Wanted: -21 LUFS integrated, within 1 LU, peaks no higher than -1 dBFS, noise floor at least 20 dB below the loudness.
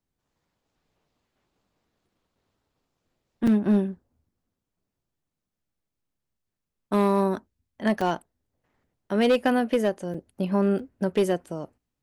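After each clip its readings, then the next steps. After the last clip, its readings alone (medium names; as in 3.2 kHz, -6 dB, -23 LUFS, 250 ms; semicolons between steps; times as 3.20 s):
clipped samples 0.6%; clipping level -15.0 dBFS; dropouts 4; longest dropout 4.7 ms; loudness -25.0 LUFS; peak level -15.0 dBFS; loudness target -21.0 LUFS
-> clip repair -15 dBFS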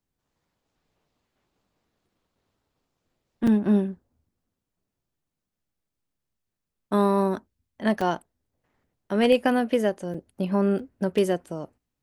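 clipped samples 0.0%; dropouts 4; longest dropout 4.7 ms
-> interpolate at 3.47/8.01/10.14/10.79 s, 4.7 ms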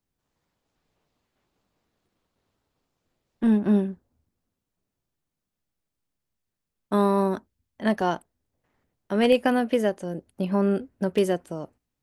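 dropouts 0; loudness -24.5 LUFS; peak level -7.0 dBFS; loudness target -21.0 LUFS
-> trim +3.5 dB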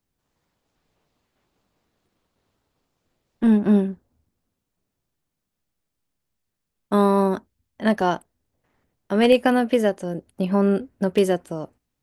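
loudness -21.0 LUFS; peak level -3.5 dBFS; noise floor -81 dBFS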